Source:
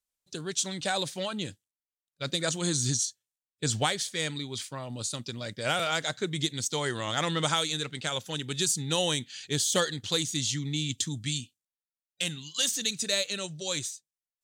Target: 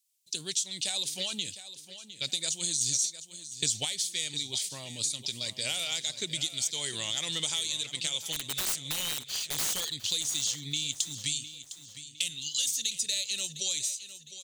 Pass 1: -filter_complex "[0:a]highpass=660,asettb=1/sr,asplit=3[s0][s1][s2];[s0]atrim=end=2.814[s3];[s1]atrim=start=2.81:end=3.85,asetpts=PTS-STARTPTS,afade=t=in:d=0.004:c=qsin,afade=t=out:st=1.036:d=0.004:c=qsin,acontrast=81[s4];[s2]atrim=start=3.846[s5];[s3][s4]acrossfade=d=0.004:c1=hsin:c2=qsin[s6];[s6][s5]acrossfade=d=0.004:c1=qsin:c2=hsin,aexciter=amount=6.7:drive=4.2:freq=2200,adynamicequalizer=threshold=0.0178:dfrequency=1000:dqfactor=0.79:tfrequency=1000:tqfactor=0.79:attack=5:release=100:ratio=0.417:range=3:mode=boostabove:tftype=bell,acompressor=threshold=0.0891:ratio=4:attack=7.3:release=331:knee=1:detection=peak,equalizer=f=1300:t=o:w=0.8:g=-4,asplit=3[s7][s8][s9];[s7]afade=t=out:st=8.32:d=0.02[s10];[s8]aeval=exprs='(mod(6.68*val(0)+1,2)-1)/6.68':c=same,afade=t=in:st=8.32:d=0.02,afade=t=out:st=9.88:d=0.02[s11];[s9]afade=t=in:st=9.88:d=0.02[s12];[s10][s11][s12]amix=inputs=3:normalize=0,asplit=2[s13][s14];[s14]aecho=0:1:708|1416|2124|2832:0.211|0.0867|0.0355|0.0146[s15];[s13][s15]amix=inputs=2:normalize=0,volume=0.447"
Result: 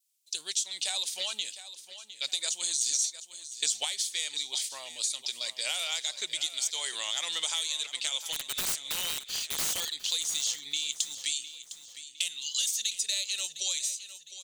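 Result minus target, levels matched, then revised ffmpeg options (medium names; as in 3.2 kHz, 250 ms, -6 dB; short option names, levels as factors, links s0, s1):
500 Hz band -3.0 dB; 1 kHz band +2.0 dB
-filter_complex "[0:a]asettb=1/sr,asplit=3[s0][s1][s2];[s0]atrim=end=2.814[s3];[s1]atrim=start=2.81:end=3.85,asetpts=PTS-STARTPTS,afade=t=in:d=0.004:c=qsin,afade=t=out:st=1.036:d=0.004:c=qsin,acontrast=81[s4];[s2]atrim=start=3.846[s5];[s3][s4]acrossfade=d=0.004:c1=hsin:c2=qsin[s6];[s6][s5]acrossfade=d=0.004:c1=qsin:c2=hsin,aexciter=amount=6.7:drive=4.2:freq=2200,acompressor=threshold=0.0891:ratio=4:attack=7.3:release=331:knee=1:detection=peak,equalizer=f=1300:t=o:w=0.8:g=-4,asplit=3[s7][s8][s9];[s7]afade=t=out:st=8.32:d=0.02[s10];[s8]aeval=exprs='(mod(6.68*val(0)+1,2)-1)/6.68':c=same,afade=t=in:st=8.32:d=0.02,afade=t=out:st=9.88:d=0.02[s11];[s9]afade=t=in:st=9.88:d=0.02[s12];[s10][s11][s12]amix=inputs=3:normalize=0,asplit=2[s13][s14];[s14]aecho=0:1:708|1416|2124|2832:0.211|0.0867|0.0355|0.0146[s15];[s13][s15]amix=inputs=2:normalize=0,volume=0.447"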